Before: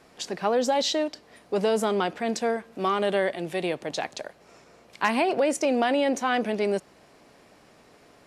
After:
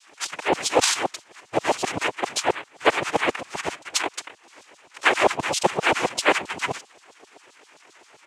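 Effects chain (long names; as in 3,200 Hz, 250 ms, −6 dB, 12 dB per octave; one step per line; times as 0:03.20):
pitch shifter −5 semitones
auto-filter high-pass saw down 7.6 Hz 470–4,600 Hz
cochlear-implant simulation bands 4
level +5.5 dB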